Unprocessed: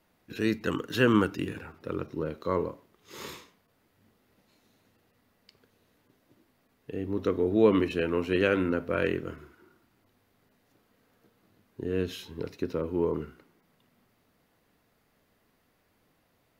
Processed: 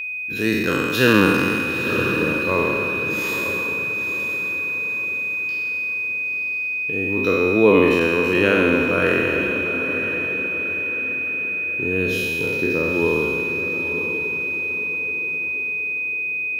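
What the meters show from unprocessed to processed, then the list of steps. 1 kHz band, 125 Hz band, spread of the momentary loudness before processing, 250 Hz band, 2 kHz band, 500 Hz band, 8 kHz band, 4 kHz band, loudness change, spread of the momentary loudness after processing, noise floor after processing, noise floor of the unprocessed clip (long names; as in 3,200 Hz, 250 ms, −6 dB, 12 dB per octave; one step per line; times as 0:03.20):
+10.5 dB, +8.0 dB, 19 LU, +8.0 dB, +20.0 dB, +9.0 dB, can't be measured, +12.0 dB, +9.5 dB, 6 LU, −25 dBFS, −70 dBFS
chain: peak hold with a decay on every bin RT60 1.94 s
high-shelf EQ 12,000 Hz +12 dB
steady tone 2,500 Hz −30 dBFS
feedback delay with all-pass diffusion 928 ms, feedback 44%, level −8.5 dB
level +4.5 dB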